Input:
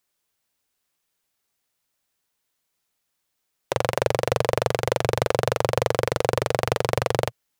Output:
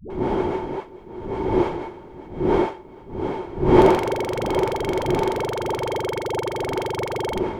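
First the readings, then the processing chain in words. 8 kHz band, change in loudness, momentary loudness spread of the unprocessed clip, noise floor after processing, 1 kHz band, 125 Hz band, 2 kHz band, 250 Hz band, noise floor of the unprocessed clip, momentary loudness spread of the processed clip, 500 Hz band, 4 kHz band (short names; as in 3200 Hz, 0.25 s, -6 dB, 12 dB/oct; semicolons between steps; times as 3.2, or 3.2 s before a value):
n/a, +1.5 dB, 2 LU, -42 dBFS, +4.0 dB, +0.5 dB, -1.5 dB, +13.5 dB, -77 dBFS, 16 LU, +3.5 dB, -2.0 dB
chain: wind noise 550 Hz -23 dBFS; small resonant body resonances 370/890/2200/3200 Hz, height 14 dB, ringing for 55 ms; dispersion highs, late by 0.102 s, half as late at 350 Hz; gain -6 dB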